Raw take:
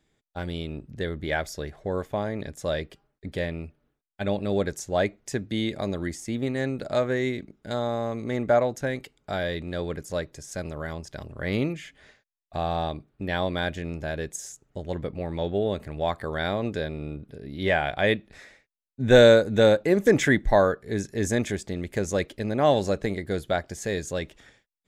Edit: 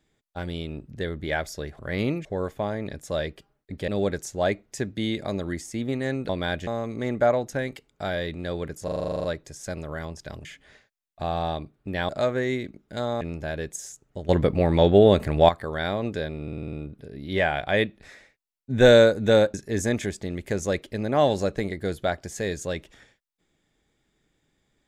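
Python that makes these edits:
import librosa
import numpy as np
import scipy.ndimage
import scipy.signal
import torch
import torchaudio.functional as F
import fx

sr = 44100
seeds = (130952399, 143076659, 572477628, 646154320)

y = fx.edit(x, sr, fx.cut(start_s=3.42, length_s=1.0),
    fx.swap(start_s=6.83, length_s=1.12, other_s=13.43, other_length_s=0.38),
    fx.stutter(start_s=10.12, slice_s=0.04, count=11),
    fx.move(start_s=11.33, length_s=0.46, to_s=1.79),
    fx.clip_gain(start_s=14.89, length_s=1.2, db=10.5),
    fx.stutter(start_s=17.03, slice_s=0.05, count=7),
    fx.cut(start_s=19.84, length_s=1.16), tone=tone)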